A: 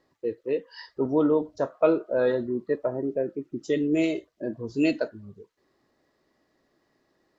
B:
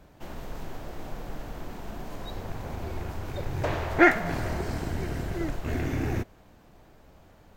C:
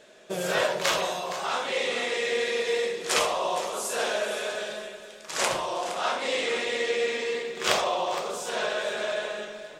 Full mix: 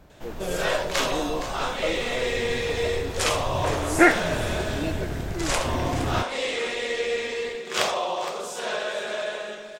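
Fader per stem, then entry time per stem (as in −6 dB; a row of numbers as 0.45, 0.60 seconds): −9.0, +1.5, 0.0 decibels; 0.00, 0.00, 0.10 seconds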